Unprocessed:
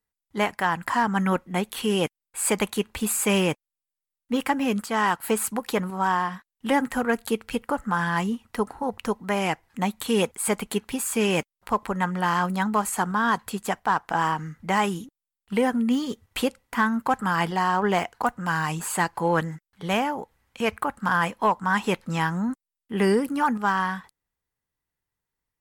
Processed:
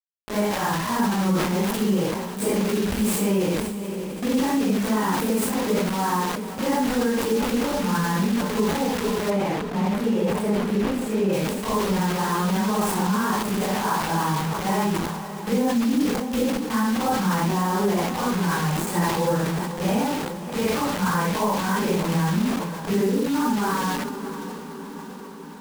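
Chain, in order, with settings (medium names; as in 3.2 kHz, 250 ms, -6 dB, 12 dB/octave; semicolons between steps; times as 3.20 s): phase randomisation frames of 200 ms; tilt shelf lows +8 dB; band-stop 700 Hz, Q 12; bit crusher 5-bit; echo that smears into a reverb 599 ms, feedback 63%, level -14.5 dB; compression, threshold -19 dBFS, peak gain reduction 8.5 dB; 9.30–11.33 s: treble shelf 4 kHz -11.5 dB; decay stretcher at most 34 dB/s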